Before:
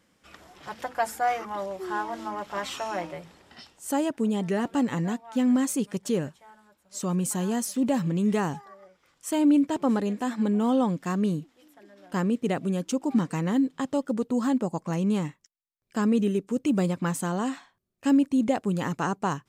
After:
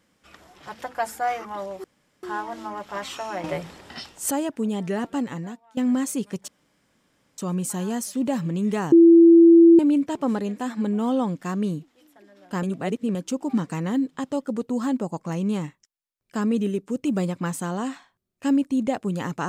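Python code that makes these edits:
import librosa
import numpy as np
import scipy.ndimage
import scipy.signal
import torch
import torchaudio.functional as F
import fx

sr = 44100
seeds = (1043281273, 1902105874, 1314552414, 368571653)

y = fx.edit(x, sr, fx.insert_room_tone(at_s=1.84, length_s=0.39),
    fx.clip_gain(start_s=3.05, length_s=0.87, db=10.0),
    fx.fade_out_to(start_s=4.66, length_s=0.72, floor_db=-18.0),
    fx.room_tone_fill(start_s=6.09, length_s=0.9),
    fx.bleep(start_s=8.53, length_s=0.87, hz=335.0, db=-8.0),
    fx.reverse_span(start_s=12.24, length_s=0.52), tone=tone)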